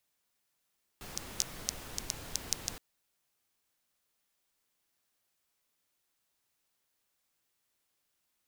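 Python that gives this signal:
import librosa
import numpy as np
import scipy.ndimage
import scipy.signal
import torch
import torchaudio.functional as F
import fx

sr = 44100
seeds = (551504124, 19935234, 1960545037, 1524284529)

y = fx.rain(sr, seeds[0], length_s=1.77, drops_per_s=5.2, hz=5900.0, bed_db=-4)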